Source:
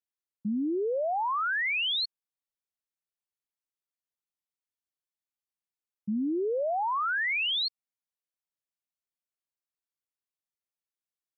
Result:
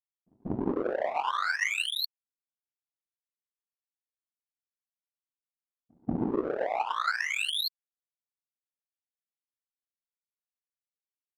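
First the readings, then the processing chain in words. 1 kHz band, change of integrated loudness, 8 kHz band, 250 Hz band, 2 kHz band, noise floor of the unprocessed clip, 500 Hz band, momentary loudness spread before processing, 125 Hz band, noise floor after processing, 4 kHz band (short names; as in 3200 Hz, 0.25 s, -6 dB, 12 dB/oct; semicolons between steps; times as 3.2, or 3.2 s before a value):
-1.5 dB, -2.0 dB, n/a, -2.0 dB, -1.5 dB, under -85 dBFS, -2.0 dB, 8 LU, +7.5 dB, under -85 dBFS, -2.5 dB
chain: whisperiser; pre-echo 0.186 s -17 dB; power-law curve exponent 2; gain +4 dB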